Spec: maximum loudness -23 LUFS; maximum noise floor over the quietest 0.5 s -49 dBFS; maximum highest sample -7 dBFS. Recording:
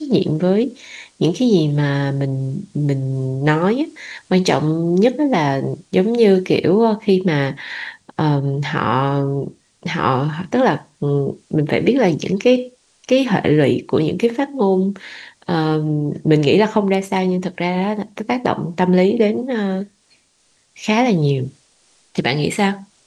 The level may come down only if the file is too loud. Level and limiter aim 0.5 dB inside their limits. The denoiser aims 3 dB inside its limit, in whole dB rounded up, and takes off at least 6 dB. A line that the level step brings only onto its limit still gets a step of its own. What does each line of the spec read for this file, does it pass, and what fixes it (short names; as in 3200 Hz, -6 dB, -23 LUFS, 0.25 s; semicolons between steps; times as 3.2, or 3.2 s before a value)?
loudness -18.0 LUFS: fail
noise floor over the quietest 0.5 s -60 dBFS: OK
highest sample -2.5 dBFS: fail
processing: gain -5.5 dB